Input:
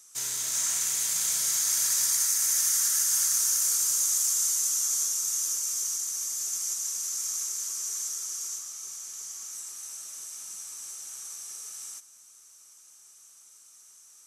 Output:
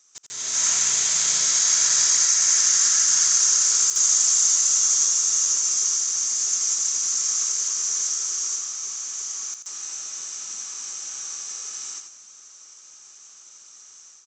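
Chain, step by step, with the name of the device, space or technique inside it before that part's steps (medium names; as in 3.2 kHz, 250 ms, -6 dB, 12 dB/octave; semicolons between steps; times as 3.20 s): call with lost packets (high-pass 130 Hz 12 dB/octave; resampled via 16 kHz; level rider gain up to 12 dB; lost packets of 60 ms bursts); feedback delay 84 ms, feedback 29%, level -7.5 dB; trim -3 dB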